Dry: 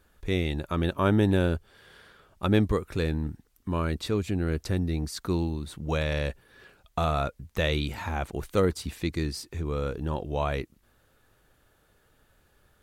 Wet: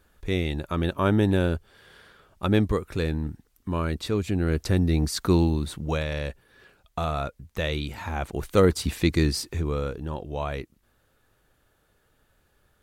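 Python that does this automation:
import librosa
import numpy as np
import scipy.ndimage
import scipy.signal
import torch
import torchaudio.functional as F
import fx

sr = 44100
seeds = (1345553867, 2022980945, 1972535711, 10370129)

y = fx.gain(x, sr, db=fx.line((4.07, 1.0), (5.05, 7.0), (5.64, 7.0), (6.07, -1.5), (7.93, -1.5), (8.88, 7.5), (9.42, 7.5), (10.03, -2.0)))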